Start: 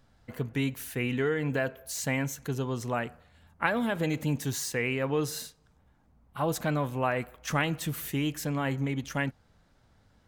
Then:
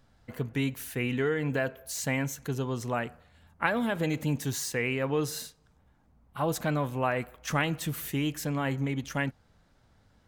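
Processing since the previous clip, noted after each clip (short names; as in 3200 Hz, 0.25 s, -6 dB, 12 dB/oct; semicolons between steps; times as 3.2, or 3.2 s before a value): nothing audible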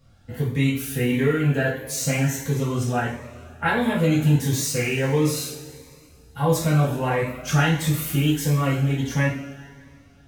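two-slope reverb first 0.5 s, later 2.4 s, from -17 dB, DRR -8 dB; cascading phaser rising 1.5 Hz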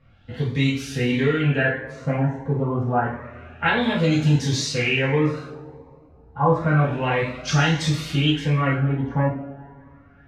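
LFO low-pass sine 0.29 Hz 840–5200 Hz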